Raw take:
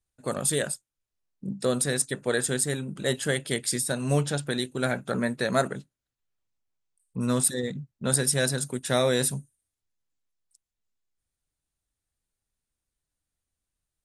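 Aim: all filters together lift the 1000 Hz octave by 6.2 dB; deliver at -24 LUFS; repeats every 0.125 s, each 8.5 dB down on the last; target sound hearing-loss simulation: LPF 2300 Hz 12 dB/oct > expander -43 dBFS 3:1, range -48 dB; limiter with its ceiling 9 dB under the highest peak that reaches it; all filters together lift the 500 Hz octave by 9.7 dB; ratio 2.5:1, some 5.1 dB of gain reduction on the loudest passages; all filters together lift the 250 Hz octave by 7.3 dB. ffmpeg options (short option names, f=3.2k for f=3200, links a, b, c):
-af "equalizer=f=250:t=o:g=6,equalizer=f=500:t=o:g=8.5,equalizer=f=1k:t=o:g=5.5,acompressor=threshold=-18dB:ratio=2.5,alimiter=limit=-17dB:level=0:latency=1,lowpass=2.3k,aecho=1:1:125|250|375|500:0.376|0.143|0.0543|0.0206,agate=range=-48dB:threshold=-43dB:ratio=3,volume=4.5dB"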